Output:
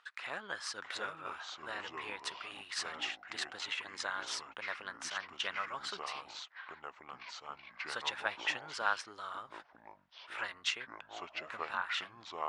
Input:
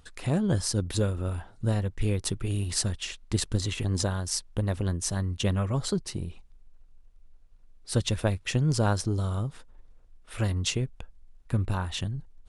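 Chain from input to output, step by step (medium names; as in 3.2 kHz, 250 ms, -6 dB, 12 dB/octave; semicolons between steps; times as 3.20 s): ladder band-pass 1.8 kHz, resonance 30%; ever faster or slower copies 591 ms, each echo -5 st, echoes 2, each echo -6 dB; trim +12 dB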